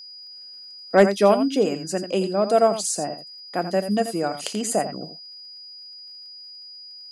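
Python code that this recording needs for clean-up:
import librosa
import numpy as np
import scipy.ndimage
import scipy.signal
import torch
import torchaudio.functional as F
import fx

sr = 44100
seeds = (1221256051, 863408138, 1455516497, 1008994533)

y = fx.fix_declip(x, sr, threshold_db=-4.5)
y = fx.fix_declick_ar(y, sr, threshold=6.5)
y = fx.notch(y, sr, hz=4900.0, q=30.0)
y = fx.fix_echo_inverse(y, sr, delay_ms=85, level_db=-10.5)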